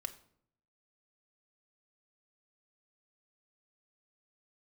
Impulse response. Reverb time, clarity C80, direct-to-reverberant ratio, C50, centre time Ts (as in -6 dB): 0.65 s, 18.5 dB, 5.5 dB, 15.0 dB, 6 ms